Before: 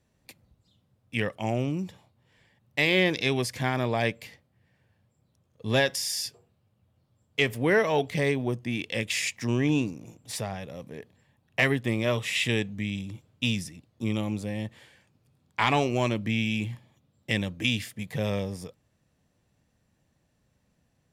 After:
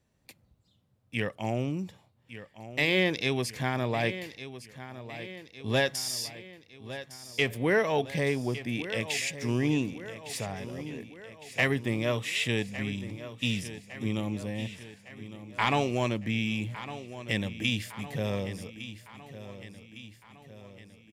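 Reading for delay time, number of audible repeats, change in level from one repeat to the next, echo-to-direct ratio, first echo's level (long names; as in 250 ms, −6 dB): 1,158 ms, 5, −5.0 dB, −12.0 dB, −13.5 dB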